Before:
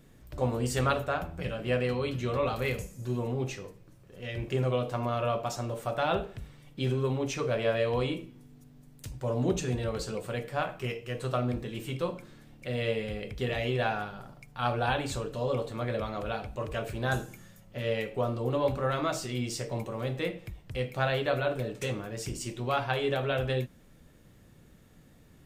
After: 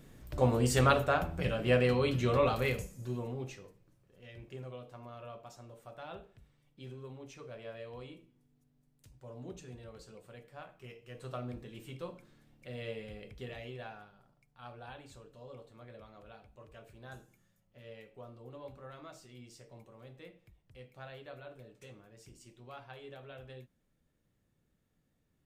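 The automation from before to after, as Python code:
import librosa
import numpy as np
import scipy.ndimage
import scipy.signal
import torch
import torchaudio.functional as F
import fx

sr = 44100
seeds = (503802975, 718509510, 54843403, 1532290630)

y = fx.gain(x, sr, db=fx.line((2.39, 1.5), (3.46, -9.0), (4.82, -18.0), (10.74, -18.0), (11.3, -11.0), (13.3, -11.0), (14.18, -20.0)))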